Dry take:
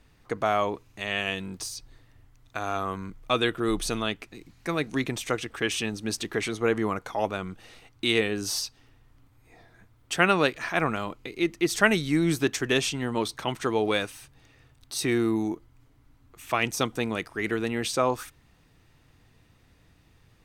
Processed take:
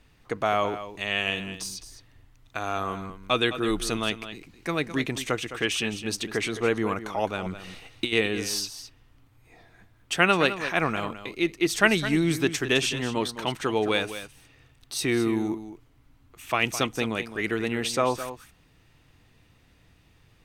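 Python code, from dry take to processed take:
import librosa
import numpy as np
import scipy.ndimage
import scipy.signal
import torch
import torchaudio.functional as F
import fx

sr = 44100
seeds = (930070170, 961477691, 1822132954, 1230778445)

p1 = fx.peak_eq(x, sr, hz=2800.0, db=3.5, octaves=0.77)
p2 = fx.over_compress(p1, sr, threshold_db=-27.0, ratio=-0.5, at=(7.46, 8.13))
y = p2 + fx.echo_single(p2, sr, ms=211, db=-12.0, dry=0)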